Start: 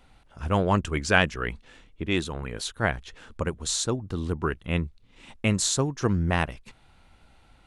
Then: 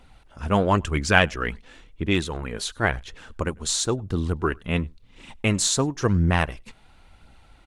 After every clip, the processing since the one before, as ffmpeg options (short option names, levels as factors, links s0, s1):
-filter_complex "[0:a]aphaser=in_gain=1:out_gain=1:delay=5:decay=0.32:speed=0.96:type=triangular,asplit=2[s0][s1];[s1]adelay=99.13,volume=0.0355,highshelf=f=4000:g=-2.23[s2];[s0][s2]amix=inputs=2:normalize=0,volume=1.33"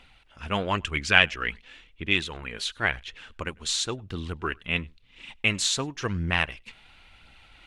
-af "equalizer=f=2700:t=o:w=1.7:g=14,areverse,acompressor=mode=upward:threshold=0.0141:ratio=2.5,areverse,volume=0.355"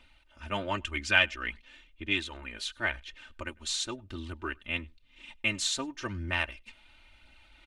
-af "aecho=1:1:3.3:0.85,volume=0.422"